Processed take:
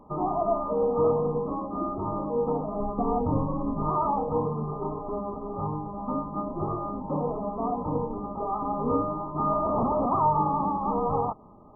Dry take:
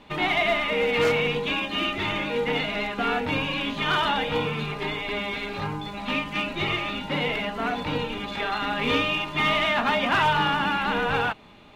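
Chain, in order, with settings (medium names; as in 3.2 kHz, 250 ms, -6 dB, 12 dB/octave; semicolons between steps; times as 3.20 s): 2.80–3.90 s: bass shelf 130 Hz +10.5 dB; 9.65–10.06 s: Schmitt trigger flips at -29.5 dBFS; brick-wall FIR low-pass 1.3 kHz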